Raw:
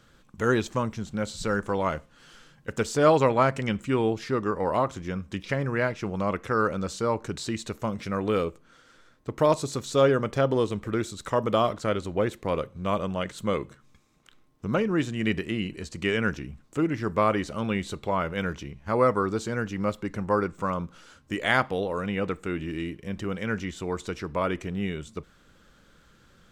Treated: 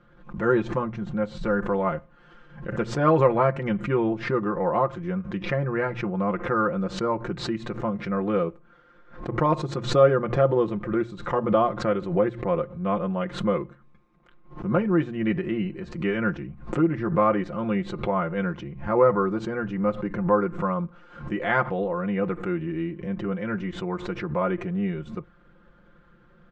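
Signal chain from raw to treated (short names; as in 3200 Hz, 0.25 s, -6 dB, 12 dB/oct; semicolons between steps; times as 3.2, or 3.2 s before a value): LPF 1600 Hz 12 dB/oct; notches 60/120 Hz; comb 5.7 ms, depth 78%; backwards sustainer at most 110 dB/s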